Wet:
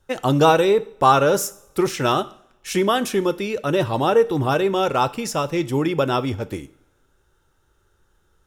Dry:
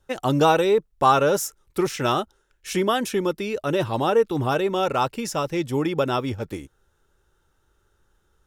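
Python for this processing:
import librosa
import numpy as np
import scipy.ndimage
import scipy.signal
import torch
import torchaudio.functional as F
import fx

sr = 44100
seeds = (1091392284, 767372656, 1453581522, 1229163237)

y = fx.rev_double_slope(x, sr, seeds[0], early_s=0.55, late_s=1.7, knee_db=-22, drr_db=14.0)
y = y * librosa.db_to_amplitude(2.5)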